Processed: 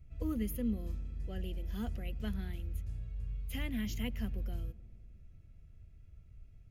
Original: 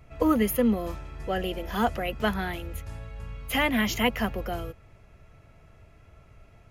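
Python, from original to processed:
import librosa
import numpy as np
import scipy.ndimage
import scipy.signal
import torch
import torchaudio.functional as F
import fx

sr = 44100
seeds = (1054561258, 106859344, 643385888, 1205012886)

p1 = fx.tone_stack(x, sr, knobs='10-0-1')
p2 = p1 + fx.echo_filtered(p1, sr, ms=103, feedback_pct=79, hz=1400.0, wet_db=-22.5, dry=0)
y = p2 * librosa.db_to_amplitude(6.5)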